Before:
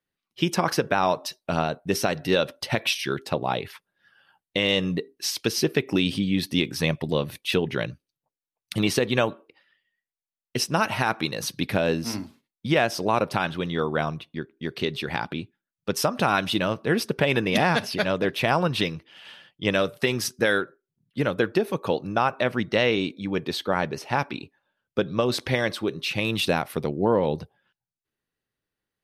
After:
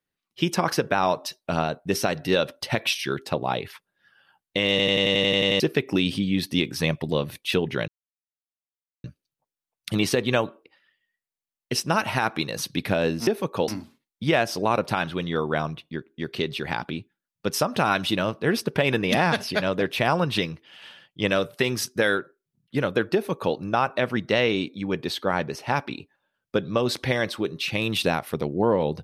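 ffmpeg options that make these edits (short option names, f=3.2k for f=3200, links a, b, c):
-filter_complex "[0:a]asplit=14[a][b][c][d][e][f][g][h][i][j][k][l][m][n];[a]atrim=end=4.792[o];[b]atrim=start=4.698:end=4.792[p];[c]atrim=start=4.698:end=4.792[q];[d]atrim=start=4.698:end=4.792[r];[e]atrim=start=4.698:end=4.792[s];[f]atrim=start=4.698:end=4.792[t];[g]atrim=start=4.698:end=4.792[u];[h]atrim=start=4.698:end=4.792[v];[i]atrim=start=4.698:end=4.792[w];[j]atrim=start=4.698:end=4.792[x];[k]atrim=start=5.598:end=7.88,asetpts=PTS-STARTPTS,afade=t=out:st=2.278:d=0.004:c=hsin,apad=pad_dur=1.16[y];[l]atrim=start=7.88:end=12.112,asetpts=PTS-STARTPTS,afade=t=in:d=0.004:c=hsin[z];[m]atrim=start=21.568:end=21.982[aa];[n]atrim=start=12.108[ab];[o][p]acrossfade=d=0.004:c1=hsin:c2=hsin[ac];[ac][q]acrossfade=d=0.004:c1=hsin:c2=hsin[ad];[ad][r]acrossfade=d=0.004:c1=hsin:c2=hsin[ae];[ae][s]acrossfade=d=0.004:c1=hsin:c2=hsin[af];[af][t]acrossfade=d=0.004:c1=hsin:c2=hsin[ag];[ag][u]acrossfade=d=0.004:c1=hsin:c2=hsin[ah];[ah][v]acrossfade=d=0.004:c1=hsin:c2=hsin[ai];[ai][w]acrossfade=d=0.004:c1=hsin:c2=hsin[aj];[aj][x]acrossfade=d=0.004:c1=hsin:c2=hsin[ak];[y][z]concat=n=2:v=0:a=1[al];[ak][al]acrossfade=d=0.004:c1=hsin:c2=hsin[am];[am][aa]acrossfade=d=0.004:c1=hsin:c2=hsin[an];[an][ab]acrossfade=d=0.004:c1=hsin:c2=hsin"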